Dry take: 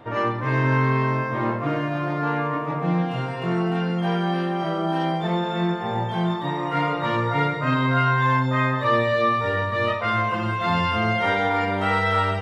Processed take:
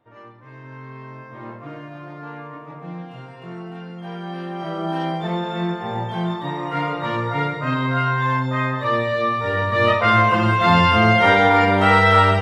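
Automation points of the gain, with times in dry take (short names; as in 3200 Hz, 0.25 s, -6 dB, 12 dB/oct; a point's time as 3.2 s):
0.61 s -20 dB
1.52 s -11 dB
3.97 s -11 dB
4.88 s -0.5 dB
9.36 s -0.5 dB
9.95 s +7.5 dB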